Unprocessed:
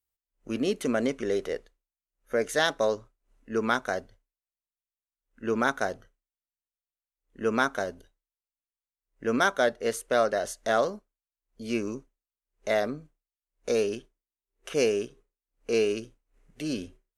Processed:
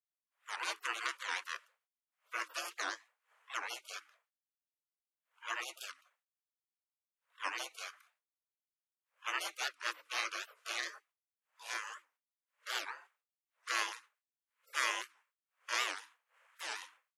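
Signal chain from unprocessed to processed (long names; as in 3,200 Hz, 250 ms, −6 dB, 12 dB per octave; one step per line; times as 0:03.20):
gate on every frequency bin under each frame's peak −30 dB weak
three-way crossover with the lows and the highs turned down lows −13 dB, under 160 Hz, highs −14 dB, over 2,200 Hz
frequency shifter +310 Hz
wow of a warped record 78 rpm, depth 250 cents
level +14 dB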